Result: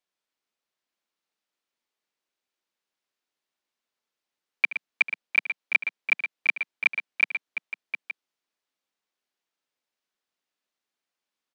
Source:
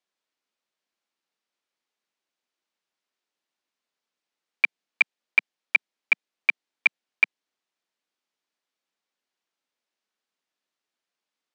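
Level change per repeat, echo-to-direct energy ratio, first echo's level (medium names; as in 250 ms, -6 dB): no regular repeats, -5.5 dB, -16.0 dB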